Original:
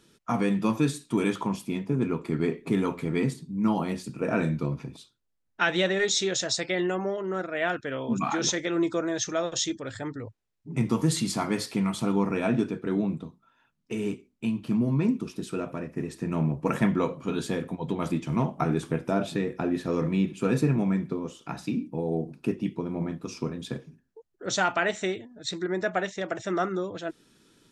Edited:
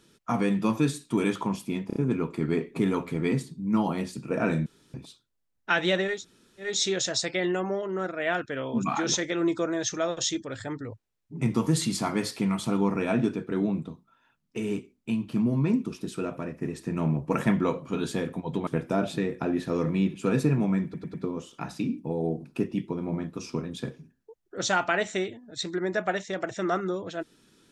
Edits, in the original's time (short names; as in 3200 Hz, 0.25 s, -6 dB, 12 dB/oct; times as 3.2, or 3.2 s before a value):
1.87 stutter 0.03 s, 4 plays
4.57–4.85 room tone
6.04 insert room tone 0.56 s, crossfade 0.24 s
18.02–18.85 cut
21.02 stutter 0.10 s, 4 plays